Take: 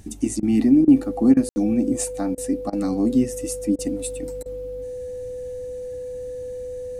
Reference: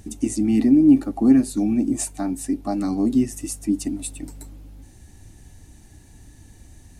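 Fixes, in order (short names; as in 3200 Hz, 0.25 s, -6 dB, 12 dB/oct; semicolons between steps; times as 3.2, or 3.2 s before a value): notch 500 Hz, Q 30; room tone fill 1.49–1.56; interpolate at 0.4/0.85/1.34/2.35/2.7/3.76/4.43, 26 ms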